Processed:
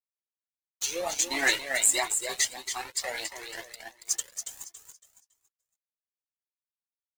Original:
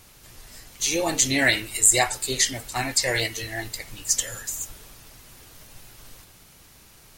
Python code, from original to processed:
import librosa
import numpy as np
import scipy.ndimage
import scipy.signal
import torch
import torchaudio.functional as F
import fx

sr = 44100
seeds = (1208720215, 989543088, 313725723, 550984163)

p1 = scipy.signal.sosfilt(scipy.signal.butter(4, 300.0, 'highpass', fs=sr, output='sos'), x)
p2 = fx.peak_eq(p1, sr, hz=970.0, db=8.0, octaves=0.41)
p3 = np.sign(p2) * np.maximum(np.abs(p2) - 10.0 ** (-31.5 / 20.0), 0.0)
p4 = fx.tremolo_random(p3, sr, seeds[0], hz=3.5, depth_pct=55)
p5 = p4 + fx.echo_feedback(p4, sr, ms=279, feedback_pct=29, wet_db=-7.0, dry=0)
p6 = fx.comb_cascade(p5, sr, direction='rising', hz=1.5)
y = F.gain(torch.from_numpy(p6), 2.5).numpy()